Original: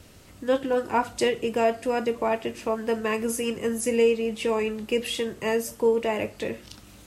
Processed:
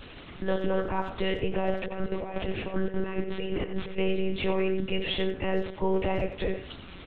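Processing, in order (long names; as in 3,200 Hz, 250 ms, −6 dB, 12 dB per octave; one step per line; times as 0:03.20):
stylus tracing distortion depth 0.072 ms
high-pass filter 76 Hz
low-shelf EQ 360 Hz +5.5 dB
0:01.71–0:03.98: compressor whose output falls as the input rises −29 dBFS, ratio −0.5
brickwall limiter −20.5 dBFS, peak gain reduction 11.5 dB
one-pitch LPC vocoder at 8 kHz 190 Hz
far-end echo of a speakerphone 90 ms, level −10 dB
one half of a high-frequency compander encoder only
level +1.5 dB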